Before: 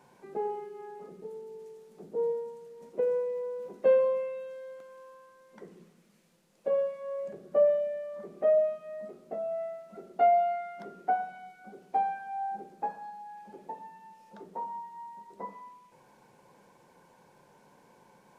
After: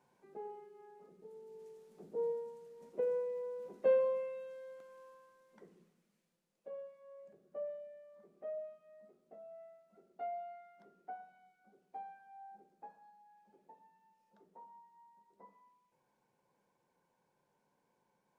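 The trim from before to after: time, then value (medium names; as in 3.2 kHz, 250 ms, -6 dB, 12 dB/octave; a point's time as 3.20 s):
1.16 s -13.5 dB
1.66 s -6.5 dB
5.06 s -6.5 dB
6.71 s -19 dB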